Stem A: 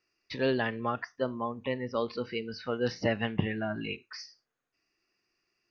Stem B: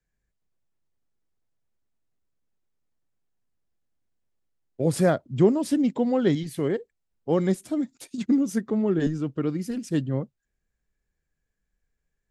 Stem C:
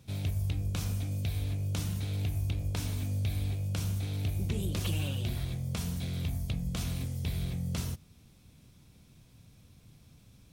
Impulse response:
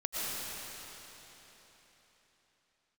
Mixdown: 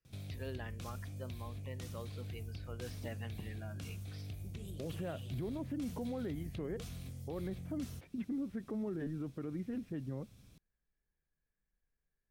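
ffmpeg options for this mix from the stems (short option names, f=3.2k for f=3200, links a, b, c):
-filter_complex "[0:a]volume=-17dB[a];[1:a]acompressor=threshold=-25dB:ratio=6,lowpass=f=2.5k:w=0.5412,lowpass=f=2.5k:w=1.3066,volume=-8dB[b];[2:a]acompressor=threshold=-44dB:ratio=2.5,bandreject=f=910:w=7.3,adelay=50,volume=-3dB[c];[a][b][c]amix=inputs=3:normalize=0,alimiter=level_in=8dB:limit=-24dB:level=0:latency=1:release=37,volume=-8dB"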